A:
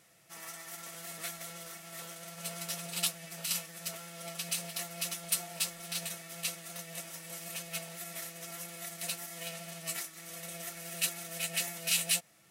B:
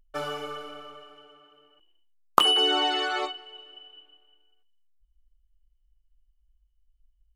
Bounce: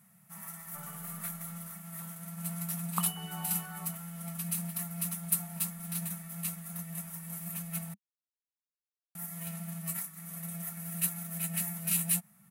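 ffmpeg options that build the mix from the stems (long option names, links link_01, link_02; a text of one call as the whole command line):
ffmpeg -i stem1.wav -i stem2.wav -filter_complex "[0:a]volume=0.5dB,asplit=3[link_01][link_02][link_03];[link_01]atrim=end=7.94,asetpts=PTS-STARTPTS,afade=type=out:start_time=7.936:duration=0.004:curve=hsin[link_04];[link_02]atrim=start=7.94:end=9.15,asetpts=PTS-STARTPTS,volume=0[link_05];[link_03]atrim=start=9.15,asetpts=PTS-STARTPTS,afade=type=in:duration=0.004:curve=hsin[link_06];[link_04][link_05][link_06]concat=n=3:v=0:a=1[link_07];[1:a]adelay=600,volume=-14dB[link_08];[link_07][link_08]amix=inputs=2:normalize=0,firequalizer=gain_entry='entry(100,0);entry(200,14);entry(290,-15);entry(430,-16);entry(910,0);entry(2900,-12);entry(5300,-13);entry(11000,5)':delay=0.05:min_phase=1" out.wav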